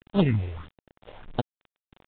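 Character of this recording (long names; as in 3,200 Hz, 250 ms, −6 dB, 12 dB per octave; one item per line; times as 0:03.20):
aliases and images of a low sample rate 2,300 Hz, jitter 0%
phaser sweep stages 4, 1.6 Hz, lowest notch 230–2,000 Hz
a quantiser's noise floor 8 bits, dither none
mu-law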